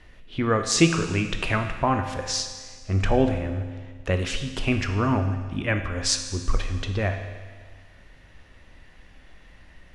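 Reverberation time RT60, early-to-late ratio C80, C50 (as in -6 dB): 1.6 s, 9.0 dB, 8.0 dB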